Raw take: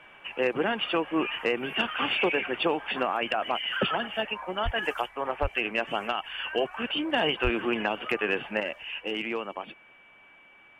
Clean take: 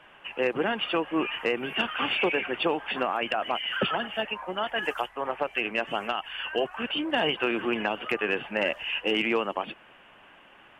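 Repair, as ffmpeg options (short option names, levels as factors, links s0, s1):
-filter_complex "[0:a]bandreject=f=2300:w=30,asplit=3[s0][s1][s2];[s0]afade=t=out:st=4.64:d=0.02[s3];[s1]highpass=f=140:w=0.5412,highpass=f=140:w=1.3066,afade=t=in:st=4.64:d=0.02,afade=t=out:st=4.76:d=0.02[s4];[s2]afade=t=in:st=4.76:d=0.02[s5];[s3][s4][s5]amix=inputs=3:normalize=0,asplit=3[s6][s7][s8];[s6]afade=t=out:st=5.41:d=0.02[s9];[s7]highpass=f=140:w=0.5412,highpass=f=140:w=1.3066,afade=t=in:st=5.41:d=0.02,afade=t=out:st=5.53:d=0.02[s10];[s8]afade=t=in:st=5.53:d=0.02[s11];[s9][s10][s11]amix=inputs=3:normalize=0,asplit=3[s12][s13][s14];[s12]afade=t=out:st=7.43:d=0.02[s15];[s13]highpass=f=140:w=0.5412,highpass=f=140:w=1.3066,afade=t=in:st=7.43:d=0.02,afade=t=out:st=7.55:d=0.02[s16];[s14]afade=t=in:st=7.55:d=0.02[s17];[s15][s16][s17]amix=inputs=3:normalize=0,asetnsamples=n=441:p=0,asendcmd='8.6 volume volume 6dB',volume=1"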